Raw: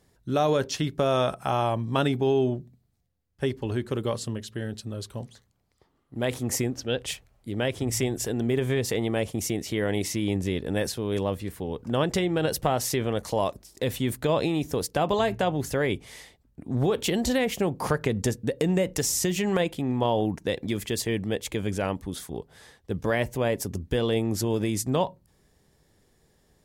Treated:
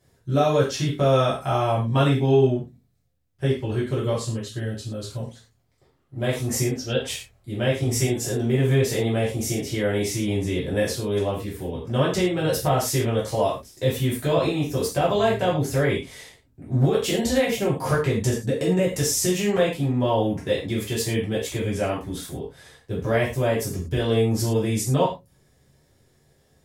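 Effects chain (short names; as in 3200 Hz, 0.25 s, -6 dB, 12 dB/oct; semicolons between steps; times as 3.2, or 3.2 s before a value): non-linear reverb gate 0.14 s falling, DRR -7.5 dB; gain -5.5 dB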